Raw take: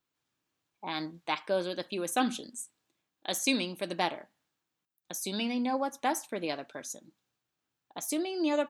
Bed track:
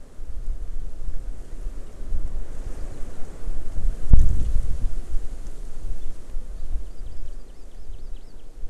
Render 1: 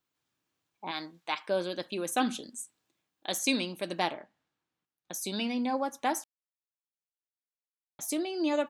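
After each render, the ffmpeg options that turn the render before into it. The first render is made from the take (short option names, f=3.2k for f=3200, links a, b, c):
-filter_complex "[0:a]asettb=1/sr,asplit=3[a][b][c];[a]atrim=end=0.914[d];[b]atrim=start=0.91:end=1.49,asetpts=PTS-STARTPTS,afade=t=in:d=0.004:c=qsin,afade=t=out:st=0.576:d=0.004:c=qsin,lowshelf=f=350:g=-10.5[e];[c]atrim=start=1.486[f];[d][e]acrossfade=d=0.004:c1=hsin:c2=qsin[g];[g][f]acrossfade=d=0.004:c1=qsin:c2=hsin,asettb=1/sr,asplit=3[h][i][j];[h]atrim=end=4.134[k];[i]atrim=start=4.13:end=5.12,asetpts=PTS-STARTPTS,afade=t=in:d=0.004:c=qsin,afade=t=out:st=0.986:d=0.004:c=qsin,aemphasis=mode=reproduction:type=50fm[l];[j]atrim=start=5.116[m];[k][l]acrossfade=d=0.004:c1=hsin:c2=qsin[n];[n][m]acrossfade=d=0.004:c1=qsin:c2=hsin,asplit=3[o][p][q];[o]atrim=end=6.24,asetpts=PTS-STARTPTS,afade=t=out:st=6.236:d=0.004:c=hsin[r];[p]atrim=start=6.24:end=7.99,asetpts=PTS-STARTPTS,volume=0[s];[q]atrim=start=7.99,asetpts=PTS-STARTPTS,afade=t=in:d=0.004:c=hsin[t];[r][s][t]concat=n=3:v=0:a=1"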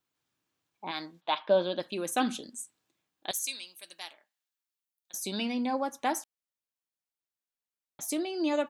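-filter_complex "[0:a]asplit=3[a][b][c];[a]afade=t=out:st=1.2:d=0.02[d];[b]highpass=110,equalizer=f=220:t=q:w=4:g=8,equalizer=f=630:t=q:w=4:g=9,equalizer=f=930:t=q:w=4:g=5,equalizer=f=2.2k:t=q:w=4:g=-6,equalizer=f=3.5k:t=q:w=4:g=8,lowpass=f=4k:w=0.5412,lowpass=f=4k:w=1.3066,afade=t=in:st=1.2:d=0.02,afade=t=out:st=1.79:d=0.02[e];[c]afade=t=in:st=1.79:d=0.02[f];[d][e][f]amix=inputs=3:normalize=0,asettb=1/sr,asplit=3[g][h][i];[g]atrim=end=3.314[j];[h]atrim=start=3.31:end=5.14,asetpts=PTS-STARTPTS,afade=t=in:d=0.004:c=qsin,afade=t=out:st=1.826:d=0.004:c=qsin,aderivative[k];[i]atrim=start=5.136[l];[j][k]acrossfade=d=0.004:c1=hsin:c2=qsin[m];[m][l]acrossfade=d=0.004:c1=qsin:c2=hsin"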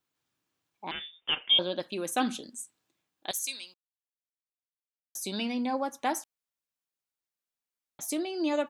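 -filter_complex "[0:a]asettb=1/sr,asplit=3[a][b][c];[a]atrim=end=0.914[d];[b]atrim=start=0.91:end=1.59,asetpts=PTS-STARTPTS,afade=t=in:d=0.004:c=qsin,afade=t=out:st=0.676:d=0.004:c=qsin,lowpass=f=3.2k:t=q:w=0.5098,lowpass=f=3.2k:t=q:w=0.6013,lowpass=f=3.2k:t=q:w=0.9,lowpass=f=3.2k:t=q:w=2.563,afreqshift=-3800[e];[c]atrim=start=1.586[f];[d][e]acrossfade=d=0.004:c1=hsin:c2=qsin[g];[g][f]acrossfade=d=0.004:c1=qsin:c2=hsin,asplit=3[h][i][j];[h]atrim=end=3.74,asetpts=PTS-STARTPTS,afade=t=out:st=3.736:d=0.004:c=hsin[k];[i]atrim=start=3.74:end=5.15,asetpts=PTS-STARTPTS,volume=0[l];[j]atrim=start=5.15,asetpts=PTS-STARTPTS,afade=t=in:d=0.004:c=hsin[m];[k][l][m]concat=n=3:v=0:a=1"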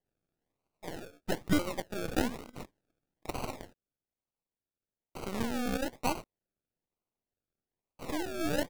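-af "aeval=exprs='if(lt(val(0),0),0.251*val(0),val(0))':c=same,acrusher=samples=35:mix=1:aa=0.000001:lfo=1:lforange=21:lforate=1.1"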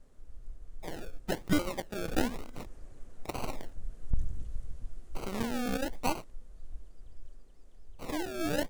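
-filter_complex "[1:a]volume=-16.5dB[a];[0:a][a]amix=inputs=2:normalize=0"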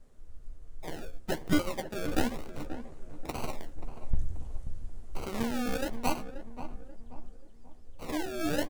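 -filter_complex "[0:a]asplit=2[a][b];[b]adelay=13,volume=-8dB[c];[a][c]amix=inputs=2:normalize=0,asplit=2[d][e];[e]adelay=533,lowpass=f=1.2k:p=1,volume=-10.5dB,asplit=2[f][g];[g]adelay=533,lowpass=f=1.2k:p=1,volume=0.42,asplit=2[h][i];[i]adelay=533,lowpass=f=1.2k:p=1,volume=0.42,asplit=2[j][k];[k]adelay=533,lowpass=f=1.2k:p=1,volume=0.42[l];[d][f][h][j][l]amix=inputs=5:normalize=0"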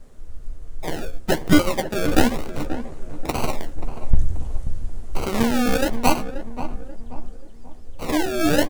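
-af "volume=12dB,alimiter=limit=-1dB:level=0:latency=1"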